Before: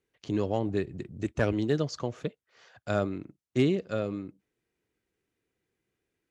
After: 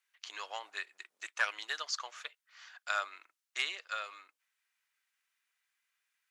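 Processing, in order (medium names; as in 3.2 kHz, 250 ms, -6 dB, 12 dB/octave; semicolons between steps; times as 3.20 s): high-pass 1.1 kHz 24 dB/octave; trim +4.5 dB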